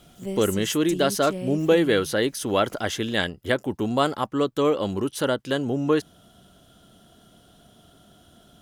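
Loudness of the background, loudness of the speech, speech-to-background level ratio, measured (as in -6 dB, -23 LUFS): -34.5 LUFS, -24.0 LUFS, 10.5 dB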